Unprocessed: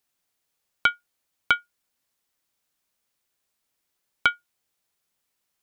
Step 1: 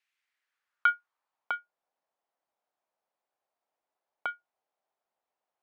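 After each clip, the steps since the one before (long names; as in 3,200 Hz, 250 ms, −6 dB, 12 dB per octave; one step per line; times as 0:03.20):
in parallel at +2.5 dB: compressor whose output falls as the input rises −24 dBFS, ratio −1
on the sum: band-pass filter sweep 2,200 Hz → 720 Hz, 0:00.15–0:01.66
level −5 dB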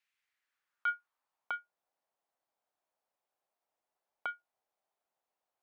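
brickwall limiter −21.5 dBFS, peak gain reduction 10 dB
level −2 dB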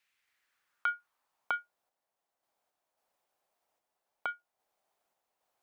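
downward compressor, threshold −35 dBFS, peak gain reduction 7.5 dB
sample-and-hold tremolo 3.7 Hz
level +8 dB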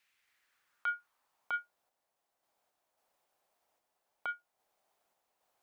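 brickwall limiter −27.5 dBFS, peak gain reduction 10 dB
level +2.5 dB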